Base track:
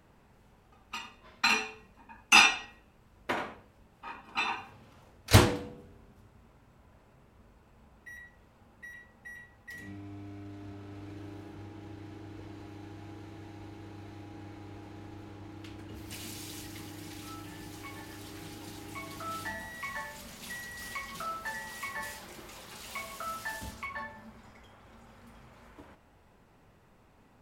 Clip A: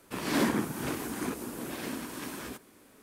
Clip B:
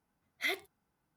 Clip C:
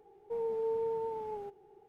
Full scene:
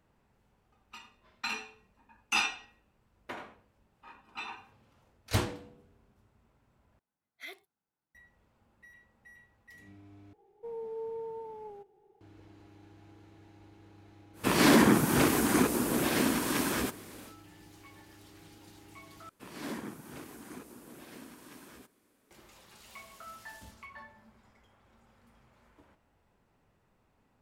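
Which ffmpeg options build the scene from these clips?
ffmpeg -i bed.wav -i cue0.wav -i cue1.wav -i cue2.wav -filter_complex "[1:a]asplit=2[link_01][link_02];[0:a]volume=-9.5dB[link_03];[2:a]lowshelf=frequency=120:gain=-10[link_04];[link_01]alimiter=level_in=20.5dB:limit=-1dB:release=50:level=0:latency=1[link_05];[link_03]asplit=4[link_06][link_07][link_08][link_09];[link_06]atrim=end=6.994[link_10];[link_04]atrim=end=1.16,asetpts=PTS-STARTPTS,volume=-11.5dB[link_11];[link_07]atrim=start=8.146:end=10.334[link_12];[3:a]atrim=end=1.88,asetpts=PTS-STARTPTS,volume=-5.5dB[link_13];[link_08]atrim=start=12.206:end=19.294[link_14];[link_02]atrim=end=3.02,asetpts=PTS-STARTPTS,volume=-12.5dB[link_15];[link_09]atrim=start=22.306[link_16];[link_05]atrim=end=3.02,asetpts=PTS-STARTPTS,volume=-11.5dB,afade=type=in:duration=0.1,afade=type=out:start_time=2.92:duration=0.1,adelay=14330[link_17];[link_10][link_11]acrossfade=duration=0.004:curve1=hsin:curve2=hsin[link_18];[link_18][link_12]acrossfade=duration=0.004:curve1=hsin:curve2=hsin[link_19];[link_19][link_13]acrossfade=duration=0.004:curve1=hsin:curve2=hsin[link_20];[link_20][link_14]acrossfade=duration=0.004:curve1=hsin:curve2=hsin[link_21];[link_21][link_15]acrossfade=duration=0.004:curve1=hsin:curve2=hsin[link_22];[link_22][link_16]acrossfade=duration=0.004:curve1=hsin:curve2=hsin[link_23];[link_23][link_17]amix=inputs=2:normalize=0" out.wav

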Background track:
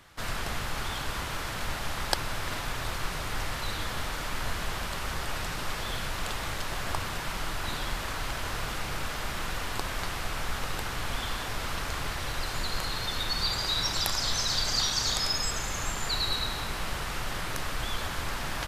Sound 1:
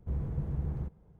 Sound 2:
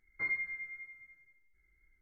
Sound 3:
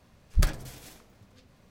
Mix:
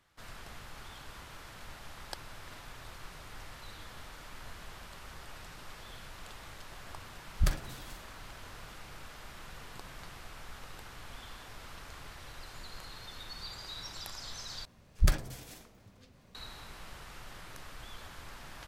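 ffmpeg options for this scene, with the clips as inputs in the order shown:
ffmpeg -i bed.wav -i cue0.wav -i cue1.wav -i cue2.wav -filter_complex "[3:a]asplit=2[link_01][link_02];[0:a]volume=-15dB[link_03];[1:a]highpass=190[link_04];[link_03]asplit=2[link_05][link_06];[link_05]atrim=end=14.654[link_07];[link_02]atrim=end=1.7,asetpts=PTS-STARTPTS,volume=-1.5dB[link_08];[link_06]atrim=start=16.346[link_09];[link_01]atrim=end=1.7,asetpts=PTS-STARTPTS,volume=-4.5dB,afade=type=in:duration=0.004:curve=hsin,afade=type=out:start_time=1.696:duration=0.004:curve=hsin,adelay=7040[link_10];[link_04]atrim=end=1.19,asetpts=PTS-STARTPTS,volume=-17.5dB,afade=type=in:duration=0.004:curve=hsin,afade=type=out:start_time=1.186:duration=0.004:curve=hsin,adelay=9360[link_11];[link_07][link_08]acrossfade=duration=0.004:curve1=hsin:curve2=hsin[link_12];[link_12][link_09]acrossfade=duration=0.004:curve1=hsin:curve2=hsin[link_13];[link_13][link_10][link_11]amix=inputs=3:normalize=0" out.wav

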